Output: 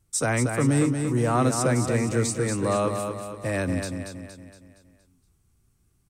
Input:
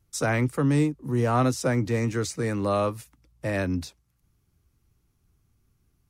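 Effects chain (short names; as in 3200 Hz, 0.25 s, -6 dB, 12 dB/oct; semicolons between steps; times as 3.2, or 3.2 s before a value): bell 8400 Hz +12 dB 0.34 oct; feedback echo 0.233 s, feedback 48%, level -6 dB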